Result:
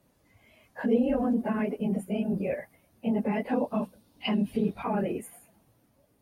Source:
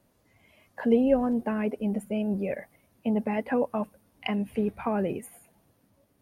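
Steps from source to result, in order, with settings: phase scrambler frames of 50 ms; 3.49–4.83 graphic EQ 250/2000/4000 Hz +4/-5/+10 dB; in parallel at +1.5 dB: limiter -21.5 dBFS, peak gain reduction 12 dB; on the sum: gain -6.5 dB

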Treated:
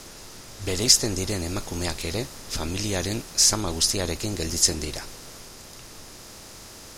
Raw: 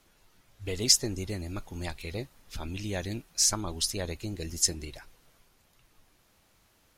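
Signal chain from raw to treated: per-bin compression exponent 0.6; gain +3.5 dB

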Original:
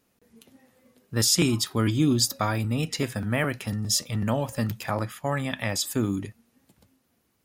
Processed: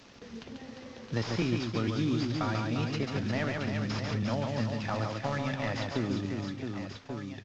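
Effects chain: CVSD 32 kbps; on a send: reverse bouncing-ball echo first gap 0.14 s, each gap 1.5×, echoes 5; on the sum: three-band squash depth 70%; gain -6 dB

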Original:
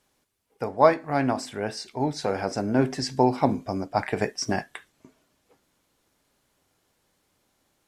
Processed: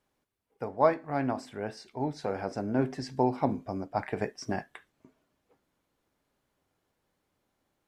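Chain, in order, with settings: bell 8000 Hz -8.5 dB 2.6 oct; gain -5.5 dB

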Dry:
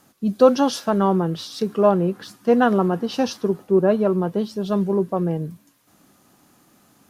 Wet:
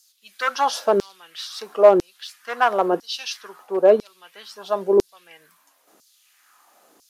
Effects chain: one-sided clip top -9 dBFS; LFO high-pass saw down 1 Hz 350–5400 Hz

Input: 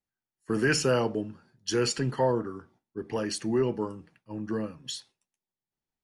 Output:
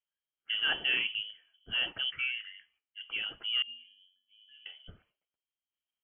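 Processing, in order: 2.1–3.01 low shelf 380 Hz -11 dB; 3.62–4.66 octave resonator F#, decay 0.5 s; inverted band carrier 3200 Hz; gain -5.5 dB

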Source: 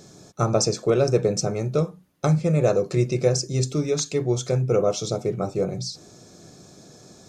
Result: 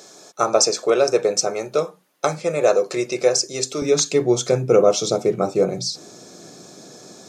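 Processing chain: HPF 500 Hz 12 dB/oct, from 3.82 s 220 Hz; gain +7 dB

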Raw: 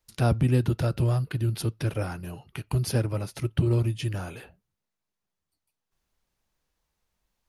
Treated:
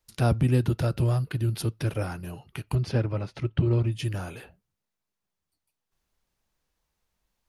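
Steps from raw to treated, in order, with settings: 2.75–3.92 LPF 3700 Hz 12 dB/oct

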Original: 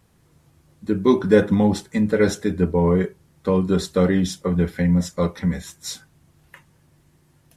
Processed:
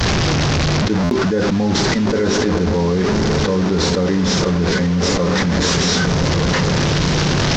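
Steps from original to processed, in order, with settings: delta modulation 32 kbps, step -21 dBFS; diffused feedback echo 1.218 s, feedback 51%, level -11 dB; expander -18 dBFS; dynamic EQ 2800 Hz, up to -5 dB, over -44 dBFS, Q 1.1; stuck buffer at 1.03, samples 512, times 6; fast leveller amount 100%; gain -6 dB

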